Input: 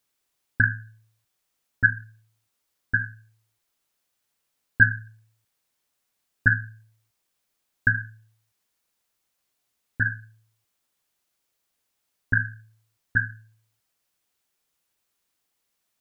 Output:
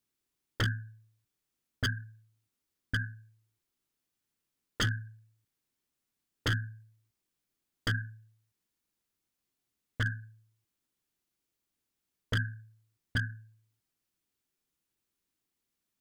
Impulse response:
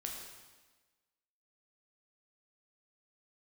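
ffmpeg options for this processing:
-af "lowshelf=f=430:t=q:w=1.5:g=7,aeval=exprs='0.2*(abs(mod(val(0)/0.2+3,4)-2)-1)':c=same,volume=0.376"

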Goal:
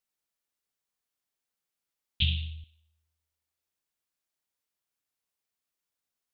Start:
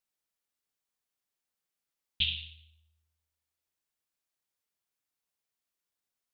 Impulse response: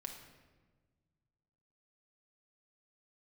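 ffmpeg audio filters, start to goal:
-filter_complex "[0:a]asettb=1/sr,asplit=3[s0][s1][s2];[s0]atrim=end=2.224[s3];[s1]atrim=start=2.22:end=2.64,asetpts=PTS-STARTPTS,afade=t=in:d=0.004:c=qsin,afade=t=out:st=0.416:d=0.004:c=qsin,lowshelf=f=220:t=q:w=3:g=13.5[s4];[s2]atrim=start=2.636[s5];[s3][s4]acrossfade=d=0.004:c1=hsin:c2=qsin[s6];[s6][s5]acrossfade=d=0.004:c1=qsin:c2=hsin"

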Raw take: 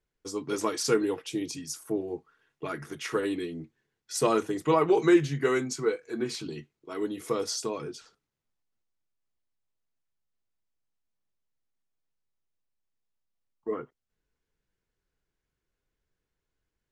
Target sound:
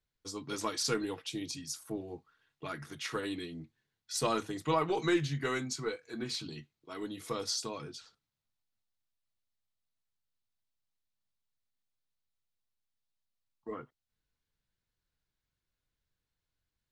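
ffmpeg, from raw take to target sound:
-af "aeval=exprs='0.335*(cos(1*acos(clip(val(0)/0.335,-1,1)))-cos(1*PI/2))+0.00335*(cos(6*acos(clip(val(0)/0.335,-1,1)))-cos(6*PI/2))':c=same,equalizer=f=100:t=o:w=0.67:g=5,equalizer=f=400:t=o:w=0.67:g=-7,equalizer=f=4000:t=o:w=0.67:g=7,volume=0.596"

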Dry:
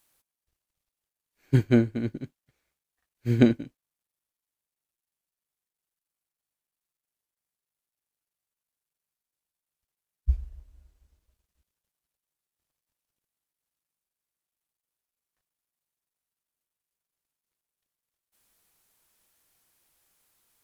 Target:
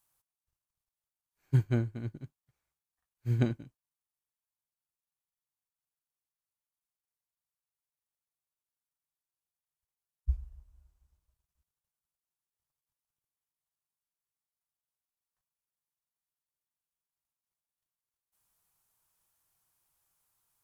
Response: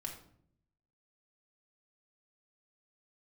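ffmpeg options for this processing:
-af "equalizer=f=125:t=o:w=1:g=5,equalizer=f=250:t=o:w=1:g=-7,equalizer=f=500:t=o:w=1:g=-5,equalizer=f=1000:t=o:w=1:g=4,equalizer=f=2000:t=o:w=1:g=-5,equalizer=f=4000:t=o:w=1:g=-4,volume=0.473"

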